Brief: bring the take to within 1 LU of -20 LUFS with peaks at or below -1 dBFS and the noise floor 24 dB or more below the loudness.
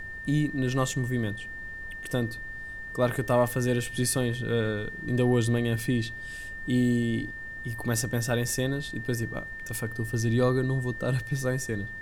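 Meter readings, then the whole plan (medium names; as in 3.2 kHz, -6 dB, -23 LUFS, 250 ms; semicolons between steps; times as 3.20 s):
steady tone 1.8 kHz; tone level -37 dBFS; noise floor -39 dBFS; noise floor target -53 dBFS; loudness -28.5 LUFS; peak level -12.0 dBFS; loudness target -20.0 LUFS
-> band-stop 1.8 kHz, Q 30; noise print and reduce 14 dB; trim +8.5 dB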